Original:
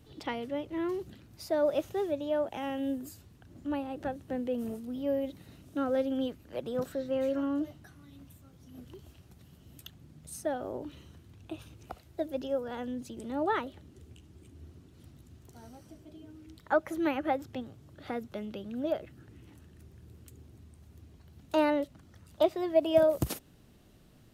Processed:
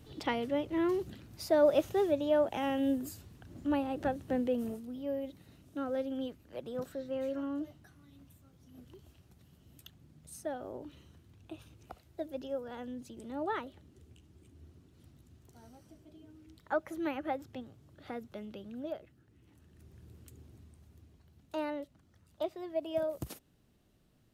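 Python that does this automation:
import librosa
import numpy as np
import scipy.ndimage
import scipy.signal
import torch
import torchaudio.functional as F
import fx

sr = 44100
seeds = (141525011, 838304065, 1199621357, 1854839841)

y = fx.gain(x, sr, db=fx.line((4.41, 2.5), (4.98, -5.5), (18.69, -5.5), (19.26, -13.0), (19.96, -2.0), (20.55, -2.0), (21.59, -10.0)))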